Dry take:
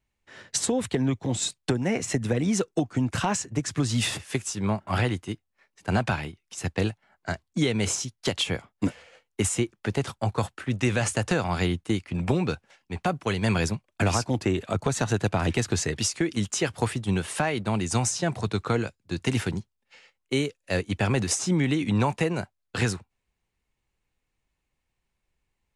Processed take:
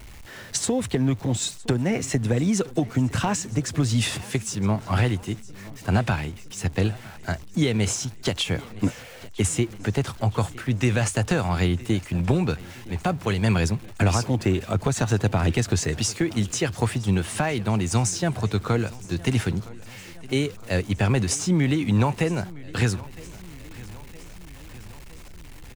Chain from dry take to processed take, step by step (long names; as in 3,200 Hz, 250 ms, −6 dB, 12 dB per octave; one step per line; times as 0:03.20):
converter with a step at zero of −40.5 dBFS
low-shelf EQ 140 Hz +7 dB
on a send: repeating echo 963 ms, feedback 60%, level −20.5 dB